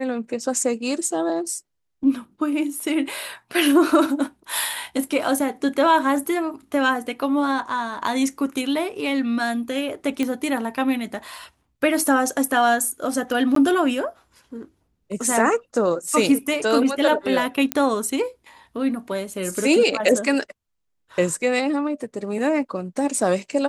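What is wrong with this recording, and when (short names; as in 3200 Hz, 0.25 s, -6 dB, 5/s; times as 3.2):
10.23 pop -11 dBFS
13.55–13.56 gap 13 ms
17.72 pop -5 dBFS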